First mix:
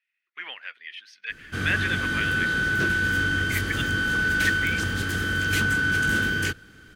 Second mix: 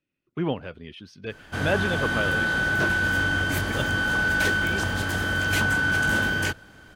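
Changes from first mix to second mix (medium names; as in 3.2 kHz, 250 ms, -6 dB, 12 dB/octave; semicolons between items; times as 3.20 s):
speech: remove resonant high-pass 1.9 kHz, resonance Q 4.2; background: add high-order bell 760 Hz +11.5 dB 1.1 oct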